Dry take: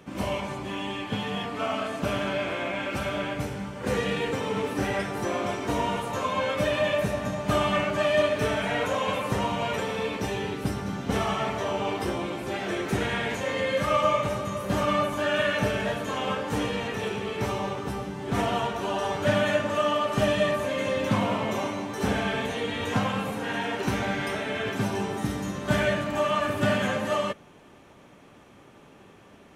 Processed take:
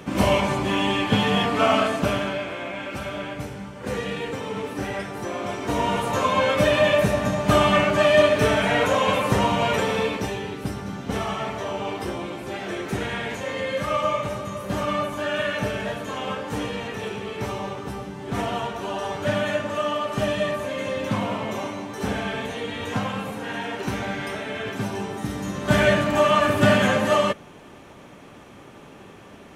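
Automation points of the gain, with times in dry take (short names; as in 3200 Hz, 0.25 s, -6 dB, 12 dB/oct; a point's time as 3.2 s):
1.78 s +10 dB
2.48 s -1.5 dB
5.35 s -1.5 dB
6.09 s +6.5 dB
9.98 s +6.5 dB
10.42 s -0.5 dB
25.24 s -0.5 dB
25.9 s +7 dB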